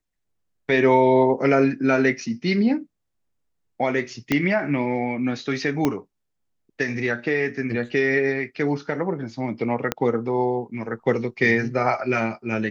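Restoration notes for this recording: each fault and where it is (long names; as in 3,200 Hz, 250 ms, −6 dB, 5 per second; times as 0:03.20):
0:04.32: click −7 dBFS
0:05.85: click −8 dBFS
0:09.92: click −7 dBFS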